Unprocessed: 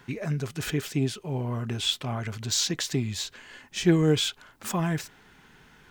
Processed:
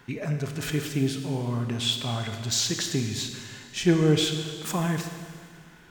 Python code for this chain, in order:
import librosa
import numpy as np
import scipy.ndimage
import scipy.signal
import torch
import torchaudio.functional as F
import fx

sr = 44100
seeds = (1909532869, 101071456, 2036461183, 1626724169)

y = fx.rev_schroeder(x, sr, rt60_s=2.0, comb_ms=26, drr_db=5.5)